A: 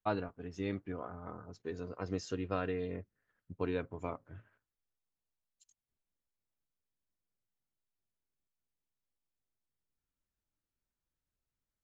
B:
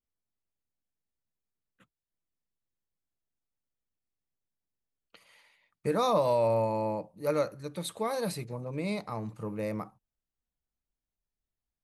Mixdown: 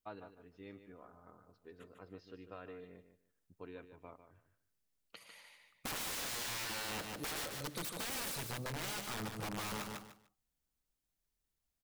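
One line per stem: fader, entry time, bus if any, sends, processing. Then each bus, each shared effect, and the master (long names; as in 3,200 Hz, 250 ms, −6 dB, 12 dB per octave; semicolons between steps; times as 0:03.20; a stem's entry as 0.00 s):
−13.0 dB, 0.00 s, no send, echo send −10.5 dB, Butterworth low-pass 4,700 Hz; low-shelf EQ 210 Hz −6.5 dB
+0.5 dB, 0.00 s, no send, echo send −6.5 dB, high-shelf EQ 4,000 Hz +5.5 dB; wrap-around overflow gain 31.5 dB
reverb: not used
echo: repeating echo 149 ms, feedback 20%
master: downward compressor 2.5 to 1, threshold −41 dBFS, peak gain reduction 6 dB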